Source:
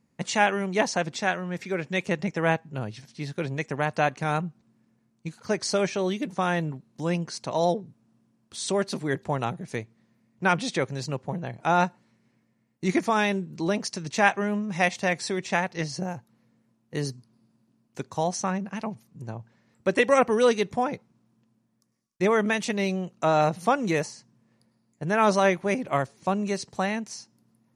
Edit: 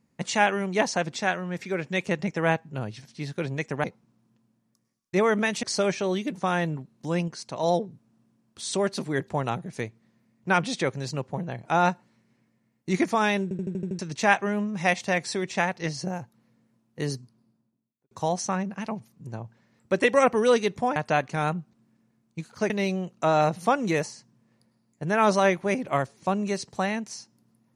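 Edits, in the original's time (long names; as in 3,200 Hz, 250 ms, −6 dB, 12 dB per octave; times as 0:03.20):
0:03.84–0:05.58: swap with 0:20.91–0:22.70
0:07.23–0:07.58: clip gain −3 dB
0:13.38: stutter in place 0.08 s, 7 plays
0:17.07–0:18.06: fade out and dull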